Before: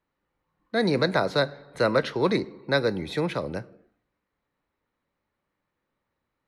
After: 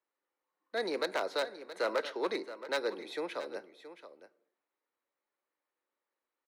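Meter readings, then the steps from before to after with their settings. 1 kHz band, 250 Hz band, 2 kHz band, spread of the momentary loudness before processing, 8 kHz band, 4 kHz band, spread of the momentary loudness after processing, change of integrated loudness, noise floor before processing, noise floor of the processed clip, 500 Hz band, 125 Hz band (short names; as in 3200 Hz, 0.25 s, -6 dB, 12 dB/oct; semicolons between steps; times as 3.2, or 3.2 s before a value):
-8.5 dB, -15.0 dB, -9.0 dB, 7 LU, n/a, -8.5 dB, 19 LU, -10.0 dB, -82 dBFS, under -85 dBFS, -9.0 dB, under -30 dB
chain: one-sided fold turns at -15.5 dBFS; HPF 330 Hz 24 dB/oct; echo 0.673 s -13.5 dB; gain -8.5 dB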